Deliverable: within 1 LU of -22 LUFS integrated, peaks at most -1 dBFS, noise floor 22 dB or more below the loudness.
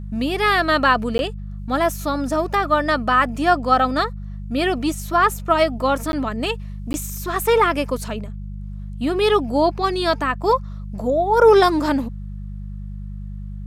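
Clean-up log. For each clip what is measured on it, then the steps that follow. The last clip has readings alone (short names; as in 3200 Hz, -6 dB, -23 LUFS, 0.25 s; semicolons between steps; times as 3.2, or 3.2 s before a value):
dropouts 3; longest dropout 11 ms; hum 50 Hz; harmonics up to 200 Hz; hum level -28 dBFS; loudness -19.5 LUFS; peak -3.5 dBFS; loudness target -22.0 LUFS
-> interpolate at 1.18/6.12/6.93, 11 ms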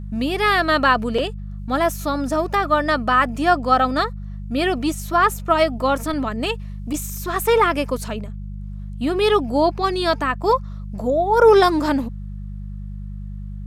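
dropouts 0; hum 50 Hz; harmonics up to 200 Hz; hum level -28 dBFS
-> de-hum 50 Hz, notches 4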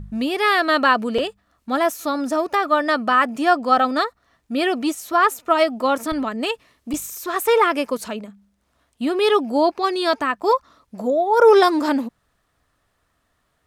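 hum none; loudness -19.5 LUFS; peak -3.5 dBFS; loudness target -22.0 LUFS
-> gain -2.5 dB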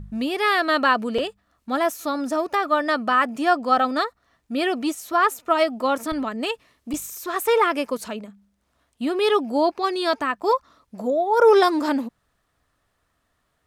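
loudness -22.0 LUFS; peak -6.0 dBFS; noise floor -71 dBFS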